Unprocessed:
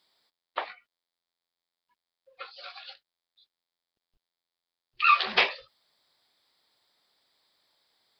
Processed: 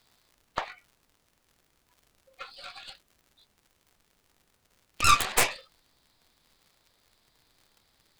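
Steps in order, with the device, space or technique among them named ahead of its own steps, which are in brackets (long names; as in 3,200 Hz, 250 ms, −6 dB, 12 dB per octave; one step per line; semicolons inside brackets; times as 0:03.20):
high-pass filter 470 Hz
record under a worn stylus (stylus tracing distortion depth 0.27 ms; surface crackle 97 per second −48 dBFS; pink noise bed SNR 37 dB)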